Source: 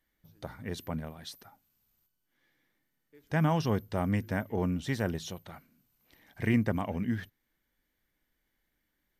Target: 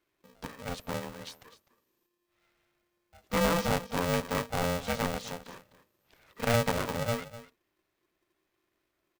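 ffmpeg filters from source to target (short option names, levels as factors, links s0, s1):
-af "highshelf=f=11000:g=-11,aecho=1:1:252:0.168,aeval=exprs='val(0)*sgn(sin(2*PI*350*n/s))':c=same"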